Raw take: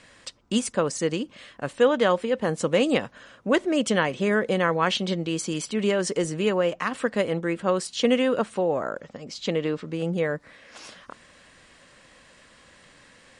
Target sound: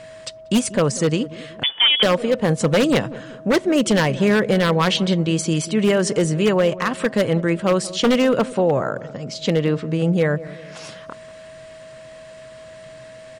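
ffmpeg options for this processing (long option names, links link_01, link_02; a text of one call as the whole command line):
ffmpeg -i in.wav -filter_complex "[0:a]equalizer=frequency=130:width_type=o:width=0.67:gain=11,aeval=exprs='0.178*(abs(mod(val(0)/0.178+3,4)-2)-1)':channel_layout=same,aeval=exprs='val(0)+0.00708*sin(2*PI*640*n/s)':channel_layout=same,asplit=2[link_01][link_02];[link_02]adelay=188,lowpass=frequency=850:poles=1,volume=-16dB,asplit=2[link_03][link_04];[link_04]adelay=188,lowpass=frequency=850:poles=1,volume=0.51,asplit=2[link_05][link_06];[link_06]adelay=188,lowpass=frequency=850:poles=1,volume=0.51,asplit=2[link_07][link_08];[link_08]adelay=188,lowpass=frequency=850:poles=1,volume=0.51,asplit=2[link_09][link_10];[link_10]adelay=188,lowpass=frequency=850:poles=1,volume=0.51[link_11];[link_03][link_05][link_07][link_09][link_11]amix=inputs=5:normalize=0[link_12];[link_01][link_12]amix=inputs=2:normalize=0,asettb=1/sr,asplit=3[link_13][link_14][link_15];[link_13]atrim=end=1.634[link_16];[link_14]atrim=start=1.63:end=2.03,asetpts=PTS-STARTPTS,afade=type=in:duration=0.004:curve=qsin,afade=type=out:start_time=0.396:duration=0.004:curve=qsin,lowpass=frequency=3100:width_type=q:width=0.5098,lowpass=frequency=3100:width_type=q:width=0.6013,lowpass=frequency=3100:width_type=q:width=0.9,lowpass=frequency=3100:width_type=q:width=2.563,afreqshift=-3600[link_17];[link_15]atrim=start=2.026[link_18];[link_16][link_17]acrossfade=duration=0.004:curve1=hsin:curve2=qsin[link_19];[link_19][link_18]acrossfade=duration=0.004:curve1=qsin:curve2=hsin,volume=5.5dB" out.wav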